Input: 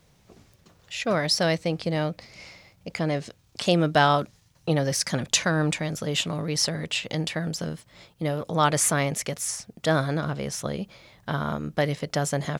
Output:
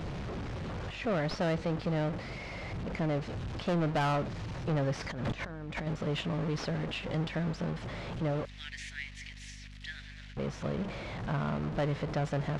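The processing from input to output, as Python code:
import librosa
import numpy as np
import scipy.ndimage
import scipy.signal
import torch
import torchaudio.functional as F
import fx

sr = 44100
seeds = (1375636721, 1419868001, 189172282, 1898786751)

y = fx.delta_mod(x, sr, bps=64000, step_db=-28.0)
y = fx.over_compress(y, sr, threshold_db=-34.0, ratio=-1.0, at=(5.07, 5.87))
y = fx.ellip_highpass(y, sr, hz=1800.0, order=4, stop_db=40, at=(8.45, 10.37))
y = np.sign(y) * np.maximum(np.abs(y) - 10.0 ** (-51.0 / 20.0), 0.0)
y = fx.add_hum(y, sr, base_hz=50, snr_db=20)
y = fx.spacing_loss(y, sr, db_at_10k=32)
y = 10.0 ** (-25.5 / 20.0) * np.tanh(y / 10.0 ** (-25.5 / 20.0))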